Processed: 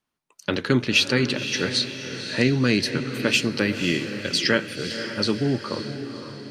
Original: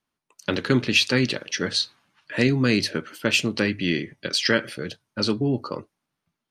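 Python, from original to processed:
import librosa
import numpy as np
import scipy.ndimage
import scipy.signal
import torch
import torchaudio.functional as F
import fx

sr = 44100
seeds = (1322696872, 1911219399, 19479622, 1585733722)

y = fx.echo_diffused(x, sr, ms=534, feedback_pct=49, wet_db=-9.0)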